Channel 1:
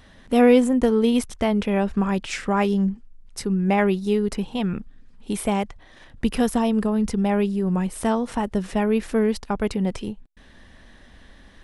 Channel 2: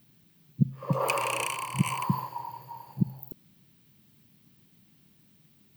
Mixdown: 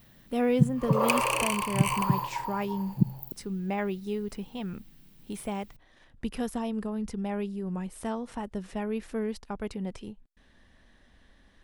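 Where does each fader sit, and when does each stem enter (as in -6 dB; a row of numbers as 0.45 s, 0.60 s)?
-11.0 dB, +2.5 dB; 0.00 s, 0.00 s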